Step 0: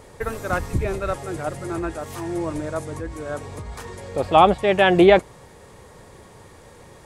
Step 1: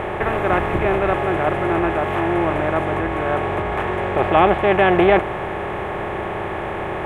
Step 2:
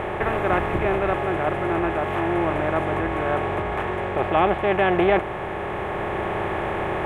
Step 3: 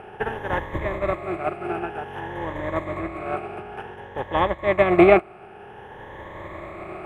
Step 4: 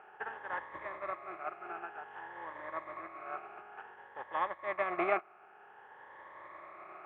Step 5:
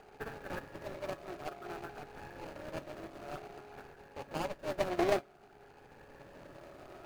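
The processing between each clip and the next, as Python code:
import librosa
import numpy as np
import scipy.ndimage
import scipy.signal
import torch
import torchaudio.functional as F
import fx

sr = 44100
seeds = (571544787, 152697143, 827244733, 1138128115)

y1 = fx.bin_compress(x, sr, power=0.4)
y1 = fx.high_shelf_res(y1, sr, hz=3300.0, db=-11.0, q=1.5)
y1 = y1 * librosa.db_to_amplitude(-4.5)
y2 = fx.rider(y1, sr, range_db=4, speed_s=2.0)
y2 = y2 * librosa.db_to_amplitude(-4.0)
y3 = fx.spec_ripple(y2, sr, per_octave=1.1, drift_hz=0.54, depth_db=12)
y3 = fx.upward_expand(y3, sr, threshold_db=-27.0, expansion=2.5)
y3 = y3 * librosa.db_to_amplitude(4.0)
y4 = fx.bandpass_q(y3, sr, hz=1300.0, q=1.6)
y4 = y4 * librosa.db_to_amplitude(-8.0)
y5 = scipy.signal.medfilt(y4, 41)
y5 = fx.comb_fb(y5, sr, f0_hz=140.0, decay_s=0.15, harmonics='all', damping=0.0, mix_pct=50)
y5 = y5 * librosa.db_to_amplitude(10.5)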